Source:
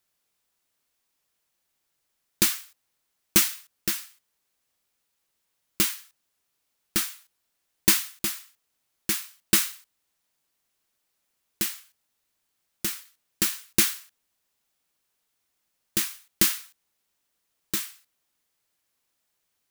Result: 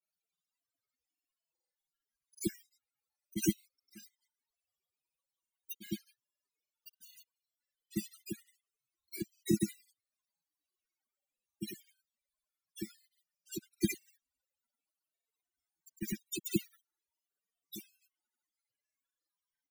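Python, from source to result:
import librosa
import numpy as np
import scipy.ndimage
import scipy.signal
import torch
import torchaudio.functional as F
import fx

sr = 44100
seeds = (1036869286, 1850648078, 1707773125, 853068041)

y = fx.spec_topn(x, sr, count=16)
y = fx.dispersion(y, sr, late='lows', ms=68.0, hz=660.0)
y = fx.granulator(y, sr, seeds[0], grain_ms=100.0, per_s=20.0, spray_ms=100.0, spread_st=0)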